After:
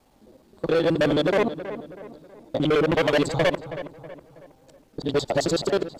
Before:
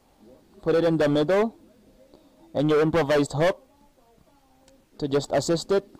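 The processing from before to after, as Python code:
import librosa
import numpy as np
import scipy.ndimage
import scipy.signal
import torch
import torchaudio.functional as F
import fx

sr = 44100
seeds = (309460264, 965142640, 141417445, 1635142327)

y = fx.local_reverse(x, sr, ms=53.0)
y = fx.dynamic_eq(y, sr, hz=2700.0, q=1.1, threshold_db=-45.0, ratio=4.0, max_db=7)
y = fx.echo_filtered(y, sr, ms=322, feedback_pct=44, hz=2300.0, wet_db=-12)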